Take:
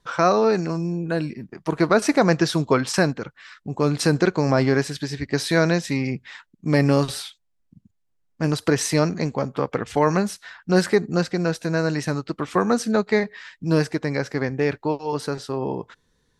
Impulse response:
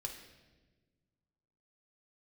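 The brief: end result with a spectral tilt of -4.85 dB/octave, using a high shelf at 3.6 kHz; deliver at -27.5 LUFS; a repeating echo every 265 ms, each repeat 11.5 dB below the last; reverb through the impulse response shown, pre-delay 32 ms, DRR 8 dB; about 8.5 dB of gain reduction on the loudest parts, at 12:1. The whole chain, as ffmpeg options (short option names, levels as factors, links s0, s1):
-filter_complex "[0:a]highshelf=f=3600:g=4.5,acompressor=threshold=0.0891:ratio=12,aecho=1:1:265|530|795:0.266|0.0718|0.0194,asplit=2[s0][s1];[1:a]atrim=start_sample=2205,adelay=32[s2];[s1][s2]afir=irnorm=-1:irlink=0,volume=0.501[s3];[s0][s3]amix=inputs=2:normalize=0,volume=0.891"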